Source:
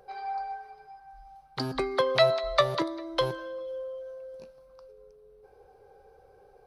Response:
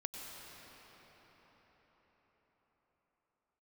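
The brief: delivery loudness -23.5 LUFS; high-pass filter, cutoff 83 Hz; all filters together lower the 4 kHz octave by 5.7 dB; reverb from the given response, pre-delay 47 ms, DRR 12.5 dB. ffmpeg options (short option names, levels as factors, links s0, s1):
-filter_complex "[0:a]highpass=83,equalizer=f=4000:t=o:g=-6.5,asplit=2[s0][s1];[1:a]atrim=start_sample=2205,adelay=47[s2];[s1][s2]afir=irnorm=-1:irlink=0,volume=0.251[s3];[s0][s3]amix=inputs=2:normalize=0,volume=2"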